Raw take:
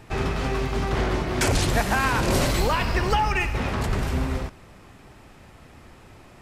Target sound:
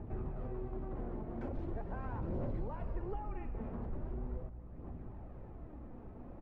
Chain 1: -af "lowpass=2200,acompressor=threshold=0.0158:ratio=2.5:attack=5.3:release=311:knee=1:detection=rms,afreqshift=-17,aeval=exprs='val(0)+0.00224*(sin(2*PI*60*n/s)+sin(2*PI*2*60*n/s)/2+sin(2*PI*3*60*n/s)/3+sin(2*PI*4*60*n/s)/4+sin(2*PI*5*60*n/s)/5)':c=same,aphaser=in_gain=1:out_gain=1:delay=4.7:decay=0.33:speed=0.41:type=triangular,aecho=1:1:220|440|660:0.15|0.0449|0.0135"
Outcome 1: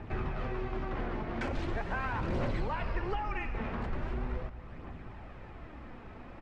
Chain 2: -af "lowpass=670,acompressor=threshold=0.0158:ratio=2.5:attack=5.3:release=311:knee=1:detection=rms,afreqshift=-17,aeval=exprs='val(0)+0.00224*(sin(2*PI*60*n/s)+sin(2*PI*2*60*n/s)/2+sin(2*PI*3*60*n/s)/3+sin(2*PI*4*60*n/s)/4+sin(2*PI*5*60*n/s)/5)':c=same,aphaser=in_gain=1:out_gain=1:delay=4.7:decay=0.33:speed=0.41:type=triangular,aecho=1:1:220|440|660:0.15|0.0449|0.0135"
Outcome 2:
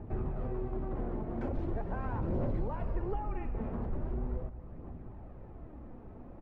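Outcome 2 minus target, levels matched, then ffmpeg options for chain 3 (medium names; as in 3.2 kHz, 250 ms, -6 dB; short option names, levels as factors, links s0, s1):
compression: peak gain reduction -5.5 dB
-af "lowpass=670,acompressor=threshold=0.00562:ratio=2.5:attack=5.3:release=311:knee=1:detection=rms,afreqshift=-17,aeval=exprs='val(0)+0.00224*(sin(2*PI*60*n/s)+sin(2*PI*2*60*n/s)/2+sin(2*PI*3*60*n/s)/3+sin(2*PI*4*60*n/s)/4+sin(2*PI*5*60*n/s)/5)':c=same,aphaser=in_gain=1:out_gain=1:delay=4.7:decay=0.33:speed=0.41:type=triangular,aecho=1:1:220|440|660:0.15|0.0449|0.0135"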